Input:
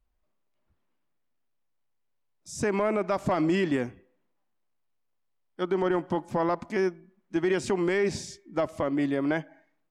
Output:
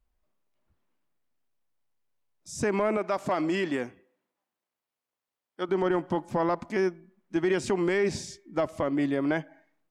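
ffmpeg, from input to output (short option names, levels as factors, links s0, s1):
-filter_complex "[0:a]asettb=1/sr,asplit=3[s0][s1][s2];[s0]atrim=end=2.974[s3];[s1]atrim=start=2.97:end=5.69,asetpts=PTS-STARTPTS,afade=t=in:d=0.004:c=qsin,afade=t=out:st=2.716:d=0.004:c=qsin,highpass=f=320:p=1[s4];[s2]atrim=start=5.686[s5];[s3][s4]acrossfade=d=0.004:c1=hsin:c2=qsin[s6];[s6][s5]acrossfade=d=0.004:c1=qsin:c2=hsin"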